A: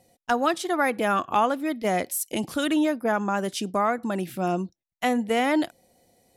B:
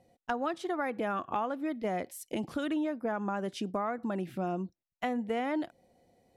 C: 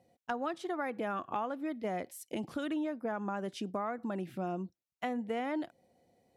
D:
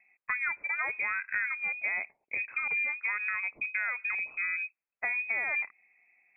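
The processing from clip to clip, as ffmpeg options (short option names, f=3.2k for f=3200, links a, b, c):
-af "lowpass=f=1.8k:p=1,acompressor=threshold=-28dB:ratio=3,volume=-2.5dB"
-af "highpass=71,volume=-3dB"
-af "lowpass=f=2.3k:t=q:w=0.5098,lowpass=f=2.3k:t=q:w=0.6013,lowpass=f=2.3k:t=q:w=0.9,lowpass=f=2.3k:t=q:w=2.563,afreqshift=-2700,volume=3.5dB"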